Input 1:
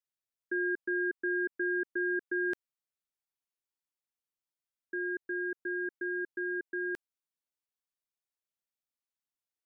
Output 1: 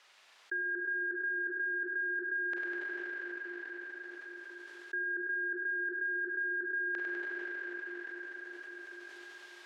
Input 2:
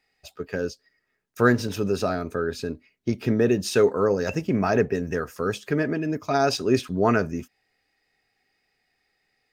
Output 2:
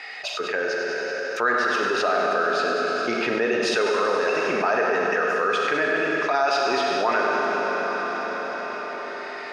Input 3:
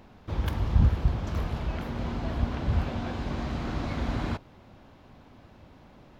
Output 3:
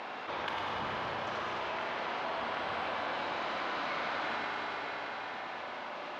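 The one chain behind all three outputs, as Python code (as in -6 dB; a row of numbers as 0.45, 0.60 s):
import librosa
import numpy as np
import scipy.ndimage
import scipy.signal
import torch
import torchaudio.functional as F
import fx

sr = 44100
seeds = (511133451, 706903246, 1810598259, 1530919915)

y = fx.rider(x, sr, range_db=10, speed_s=2.0)
y = fx.bandpass_edges(y, sr, low_hz=740.0, high_hz=3500.0)
y = fx.echo_feedback(y, sr, ms=100, feedback_pct=49, wet_db=-8.5)
y = fx.rev_schroeder(y, sr, rt60_s=3.1, comb_ms=31, drr_db=1.5)
y = fx.env_flatten(y, sr, amount_pct=70)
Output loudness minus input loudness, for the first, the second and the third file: -2.0, +1.5, -6.0 LU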